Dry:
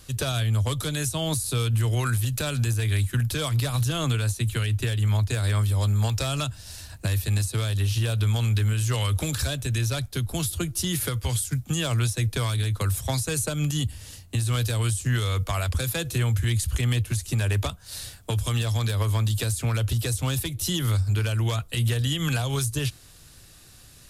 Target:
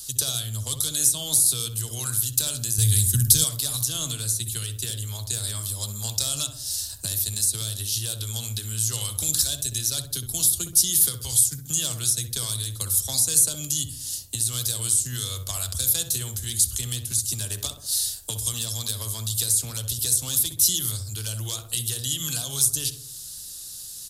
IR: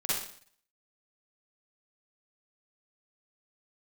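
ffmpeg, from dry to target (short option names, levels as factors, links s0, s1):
-filter_complex "[0:a]asplit=2[s0][s1];[s1]adelay=64,lowpass=f=1200:p=1,volume=0.501,asplit=2[s2][s3];[s3]adelay=64,lowpass=f=1200:p=1,volume=0.51,asplit=2[s4][s5];[s5]adelay=64,lowpass=f=1200:p=1,volume=0.51,asplit=2[s6][s7];[s7]adelay=64,lowpass=f=1200:p=1,volume=0.51,asplit=2[s8][s9];[s9]adelay=64,lowpass=f=1200:p=1,volume=0.51,asplit=2[s10][s11];[s11]adelay=64,lowpass=f=1200:p=1,volume=0.51[s12];[s0][s2][s4][s6][s8][s10][s12]amix=inputs=7:normalize=0,asplit=2[s13][s14];[s14]acompressor=threshold=0.0158:ratio=6,volume=1.19[s15];[s13][s15]amix=inputs=2:normalize=0,aexciter=amount=12.5:drive=1.3:freq=3400,asettb=1/sr,asplit=3[s16][s17][s18];[s16]atrim=end=2.784[s19];[s17]atrim=start=2.78:end=3.44,asetpts=PTS-STARTPTS,afade=t=in:d=0.004:c=qsin,afade=t=out:st=0.656:d=0.004:c=qsin,bass=f=250:g=13,treble=f=4000:g=9[s20];[s18]atrim=start=3.436[s21];[s19][s20]acrossfade=d=0.004:c1=hsin:c2=qsin[s22];[s22][s21]acrossfade=d=0.004:c1=qsin:c2=hsin,volume=0.224"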